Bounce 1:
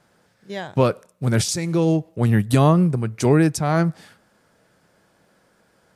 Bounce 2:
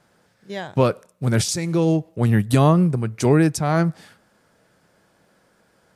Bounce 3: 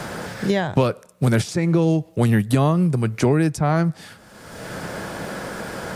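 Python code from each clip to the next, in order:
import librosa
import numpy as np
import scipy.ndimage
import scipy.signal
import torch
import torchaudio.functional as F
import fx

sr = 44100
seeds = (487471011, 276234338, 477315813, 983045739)

y1 = x
y2 = fx.band_squash(y1, sr, depth_pct=100)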